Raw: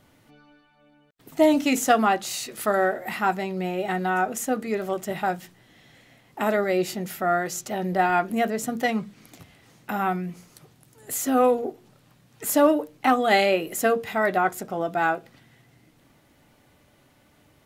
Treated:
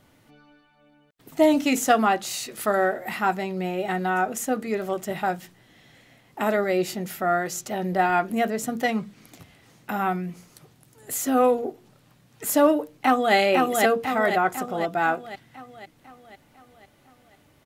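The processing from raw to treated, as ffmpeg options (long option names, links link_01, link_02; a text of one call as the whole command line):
ffmpeg -i in.wav -filter_complex "[0:a]asplit=2[link_01][link_02];[link_02]afade=type=in:start_time=12.93:duration=0.01,afade=type=out:start_time=13.35:duration=0.01,aecho=0:1:500|1000|1500|2000|2500|3000|3500|4000:0.749894|0.412442|0.226843|0.124764|0.06862|0.037741|0.0207576|0.0114167[link_03];[link_01][link_03]amix=inputs=2:normalize=0" out.wav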